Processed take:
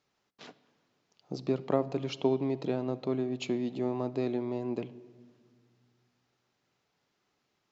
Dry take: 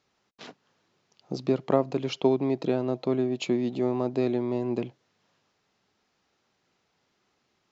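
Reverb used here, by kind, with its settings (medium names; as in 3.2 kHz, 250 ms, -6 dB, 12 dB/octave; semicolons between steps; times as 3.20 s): simulated room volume 2400 m³, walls mixed, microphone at 0.35 m; trim -5 dB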